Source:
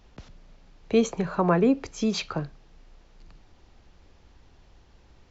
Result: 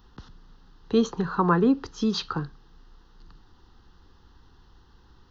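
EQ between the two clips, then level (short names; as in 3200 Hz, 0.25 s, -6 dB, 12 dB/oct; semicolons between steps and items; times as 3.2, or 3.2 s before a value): bell 650 Hz +7.5 dB 2.3 oct; high shelf 6400 Hz +6.5 dB; fixed phaser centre 2300 Hz, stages 6; 0.0 dB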